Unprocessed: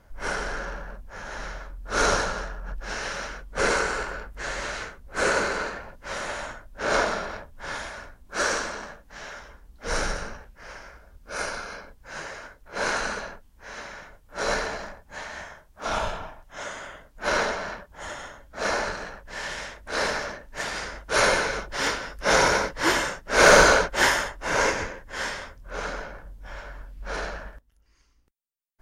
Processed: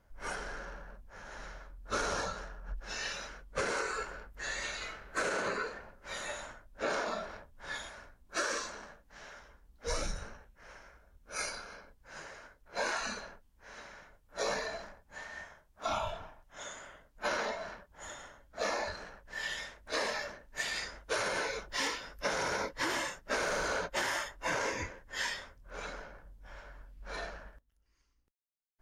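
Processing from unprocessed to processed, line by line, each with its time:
4.77–5.36 reverb throw, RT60 1.1 s, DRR -1.5 dB
10.02–11.34 notch 4800 Hz
whole clip: spectral noise reduction 11 dB; limiter -15 dBFS; compressor 12:1, threshold -30 dBFS

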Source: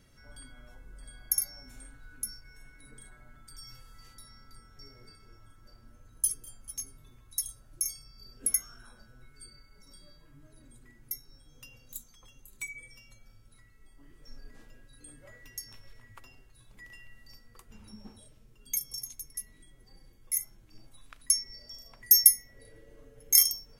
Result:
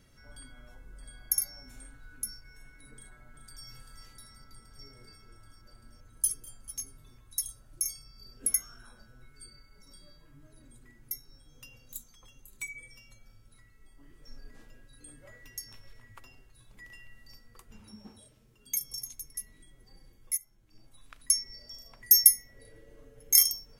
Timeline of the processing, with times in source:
2.94–3.66 echo throw 0.39 s, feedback 80%, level -8 dB
17.8–18.81 HPF 83 Hz 6 dB/oct
20.37–21.17 fade in, from -16.5 dB

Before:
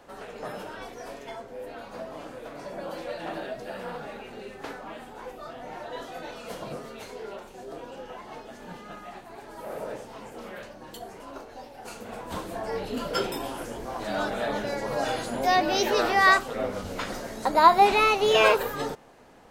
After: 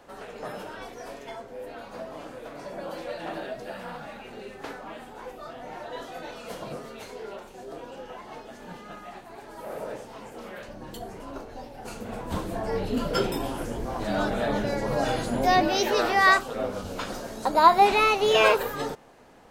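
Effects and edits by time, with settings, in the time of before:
3.73–4.25 bell 420 Hz -11.5 dB 0.38 oct
10.68–15.68 low shelf 270 Hz +10 dB
16.41–17.67 bell 2000 Hz -7.5 dB 0.3 oct

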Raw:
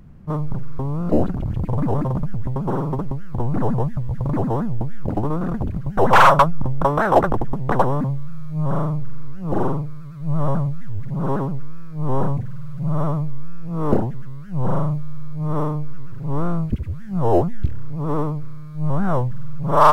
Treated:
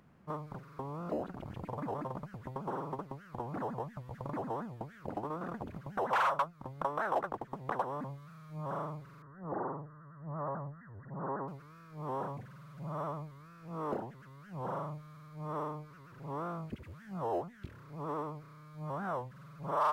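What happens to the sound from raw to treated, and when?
9.22–11.48 brick-wall FIR low-pass 2000 Hz
whole clip: HPF 1200 Hz 6 dB/oct; high shelf 2200 Hz -8.5 dB; compressor 2:1, threshold -38 dBFS

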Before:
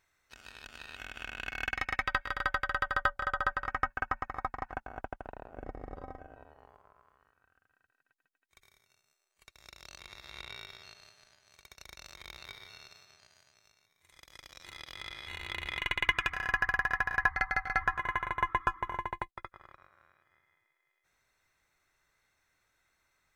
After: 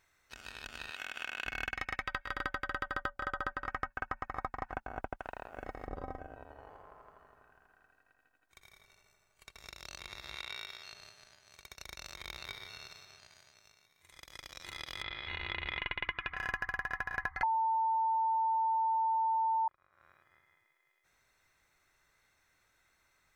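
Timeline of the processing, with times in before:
0.9–1.46 HPF 550 Hz 6 dB/oct
2.32–3.68 bell 300 Hz +9.5 dB
5.19–5.87 tilt shelf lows -7.5 dB, about 860 Hz
6.42–9.72 darkening echo 82 ms, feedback 80%, low-pass 4000 Hz, level -4.5 dB
10.35–10.93 low shelf 420 Hz -10.5 dB
12.32–12.78 echo throw 0.41 s, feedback 40%, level -16.5 dB
15.02–16.37 LPF 3900 Hz 24 dB/oct
17.43–19.68 bleep 895 Hz -7 dBFS
whole clip: compressor 6:1, threshold -36 dBFS; gain +3 dB

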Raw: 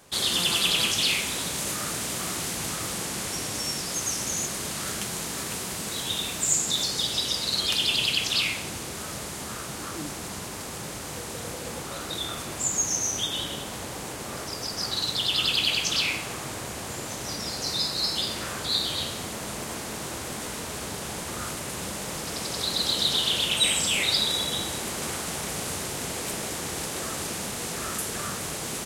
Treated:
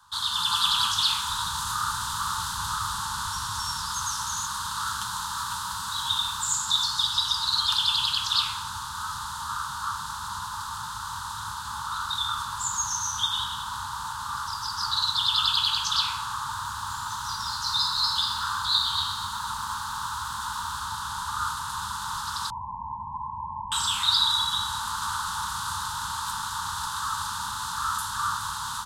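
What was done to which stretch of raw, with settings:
1.29–4.06 low shelf 110 Hz +7.5 dB
16.37–20.8 lo-fi delay 0.121 s, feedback 80%, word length 7-bit, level -11.5 dB
22.5–23.72 brick-wall FIR low-pass 1100 Hz
whole clip: EQ curve 100 Hz 0 dB, 150 Hz -10 dB, 470 Hz -22 dB, 690 Hz +10 dB, 990 Hz +12 dB, 1500 Hz +8 dB, 2200 Hz -19 dB, 3600 Hz +5 dB, 5600 Hz -3 dB, 14000 Hz -6 dB; AGC gain up to 5 dB; Chebyshev band-stop 250–890 Hz, order 5; gain -4.5 dB

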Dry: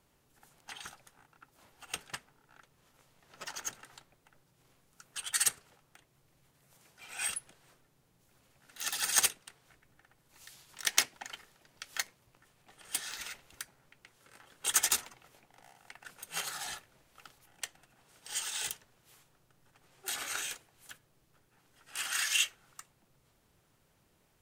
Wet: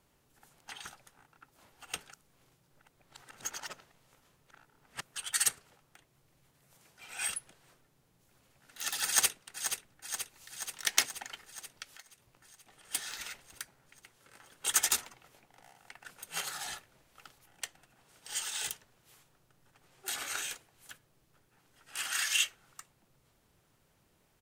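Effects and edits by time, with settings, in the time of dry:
2.12–5.02 reverse
9.06–9.46 echo throw 0.48 s, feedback 70%, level -8 dB
11.83–12.91 compressor 3:1, threshold -55 dBFS

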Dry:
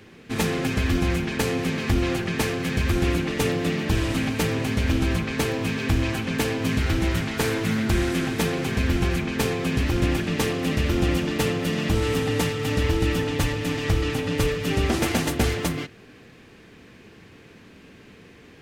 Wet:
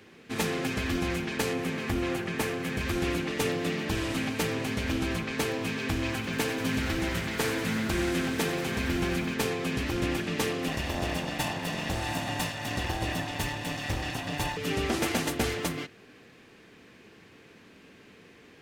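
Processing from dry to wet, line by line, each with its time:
1.53–2.81 bell 4700 Hz -4.5 dB 1.4 oct
5.95–9.34 lo-fi delay 92 ms, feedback 80%, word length 8-bit, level -12 dB
10.68–14.57 minimum comb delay 1.1 ms
whole clip: low shelf 140 Hz -10 dB; gain -3.5 dB

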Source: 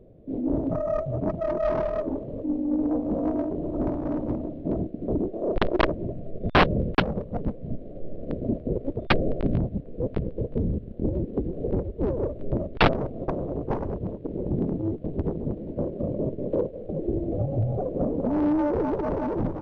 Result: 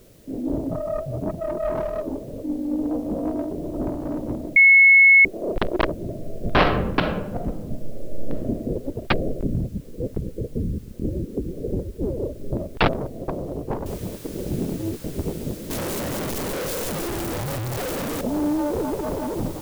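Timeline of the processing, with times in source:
0.61–1.76 air absorption 180 m
4.56–5.25 bleep 2190 Hz -8.5 dBFS
6.03–8.69 reverb throw, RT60 0.82 s, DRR 3.5 dB
9.29–12.53 formant sharpening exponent 1.5
13.86 noise floor step -58 dB -44 dB
15.7–18.21 infinite clipping

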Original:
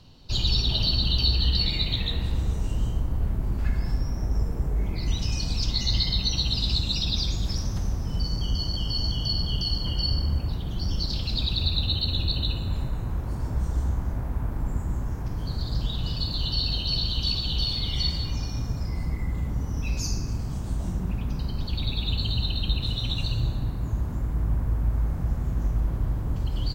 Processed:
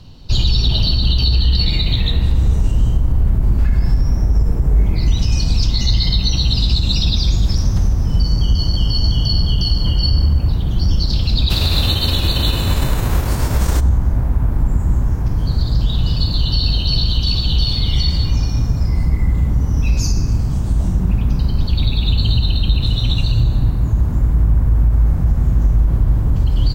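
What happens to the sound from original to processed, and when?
11.49–13.79 spectral whitening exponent 0.6
whole clip: low shelf 190 Hz +7 dB; limiter -13 dBFS; gain +7 dB

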